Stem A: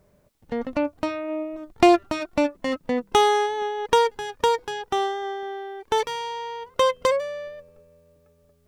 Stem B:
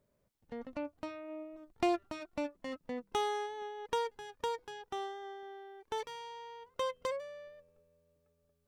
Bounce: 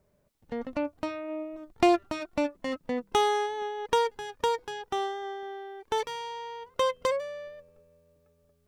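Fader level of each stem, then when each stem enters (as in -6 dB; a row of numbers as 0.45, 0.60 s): -9.5, -1.5 dB; 0.00, 0.00 s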